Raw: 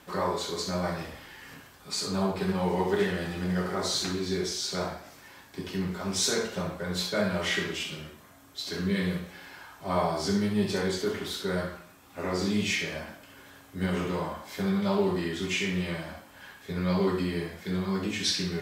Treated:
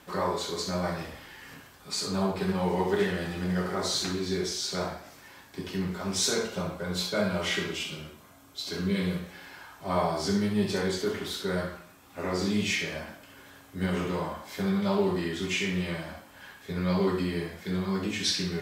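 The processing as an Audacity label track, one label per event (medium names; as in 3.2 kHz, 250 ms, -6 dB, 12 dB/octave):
6.300000	9.200000	band-stop 1.8 kHz, Q 7.9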